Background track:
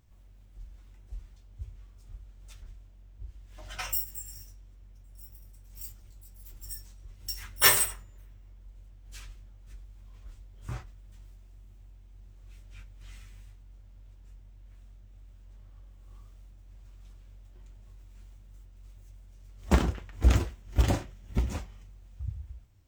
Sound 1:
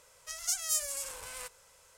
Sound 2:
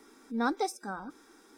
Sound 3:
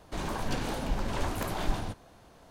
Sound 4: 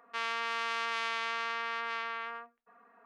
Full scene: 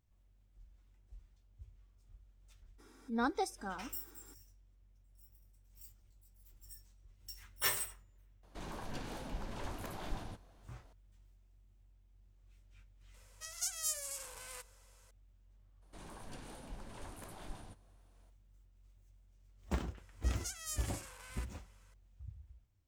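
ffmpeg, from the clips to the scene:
-filter_complex "[3:a]asplit=2[s0][s1];[1:a]asplit=2[s2][s3];[0:a]volume=0.211[s4];[s1]equalizer=f=9300:t=o:w=0.42:g=10.5[s5];[s3]equalizer=f=1700:w=0.56:g=8[s6];[2:a]atrim=end=1.57,asetpts=PTS-STARTPTS,volume=0.596,afade=t=in:d=0.02,afade=t=out:st=1.55:d=0.02,adelay=2780[s7];[s0]atrim=end=2.5,asetpts=PTS-STARTPTS,volume=0.266,afade=t=in:d=0.004:c=hsin,afade=t=out:st=2.496:d=0.004:c=hsin,adelay=8430[s8];[s2]atrim=end=1.97,asetpts=PTS-STARTPTS,volume=0.501,afade=t=in:d=0.004:c=hsin,afade=t=out:st=1.966:d=0.004:c=hsin,adelay=13140[s9];[s5]atrim=end=2.5,asetpts=PTS-STARTPTS,volume=0.126,afade=t=in:d=0.02,afade=t=out:st=2.48:d=0.02,adelay=15810[s10];[s6]atrim=end=1.97,asetpts=PTS-STARTPTS,volume=0.211,afade=t=in:d=0.004:c=hsin,afade=t=out:st=1.966:d=0.004:c=hsin,adelay=19970[s11];[s4][s7][s8][s9][s10][s11]amix=inputs=6:normalize=0"

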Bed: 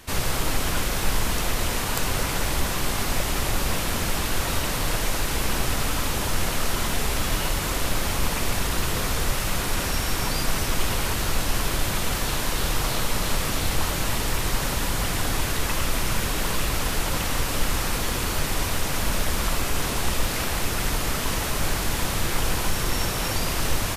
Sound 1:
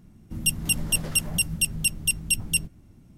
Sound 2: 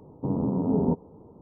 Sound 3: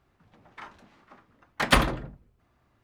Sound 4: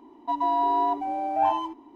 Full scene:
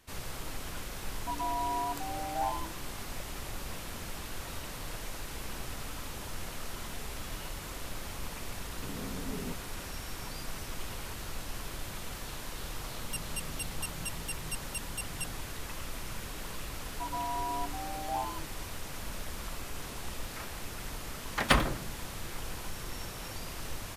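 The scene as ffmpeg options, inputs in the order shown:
-filter_complex "[4:a]asplit=2[s0][s1];[0:a]volume=0.168[s2];[s0]atrim=end=1.95,asetpts=PTS-STARTPTS,volume=0.316,afade=t=in:d=0.004:c=hsin,afade=t=out:st=1.946:d=0.004:c=hsin,adelay=990[s3];[2:a]atrim=end=1.41,asetpts=PTS-STARTPTS,volume=0.158,afade=t=in:d=0.004:c=hsin,afade=t=out:st=1.406:d=0.004:c=hsin,adelay=8590[s4];[1:a]atrim=end=3.17,asetpts=PTS-STARTPTS,volume=0.158,afade=t=in:d=0.004:c=hsin,afade=t=out:st=3.166:d=0.004:c=hsin,adelay=12670[s5];[s1]atrim=end=1.95,asetpts=PTS-STARTPTS,volume=0.251,afade=t=in:d=0.004:c=hsin,afade=t=out:st=1.946:d=0.004:c=hsin,adelay=16720[s6];[3:a]atrim=end=2.83,asetpts=PTS-STARTPTS,volume=0.596,afade=t=in:d=0.004:c=hsin,afade=t=out:st=2.826:d=0.004:c=hsin,adelay=19780[s7];[s2][s3][s4][s5][s6][s7]amix=inputs=6:normalize=0"

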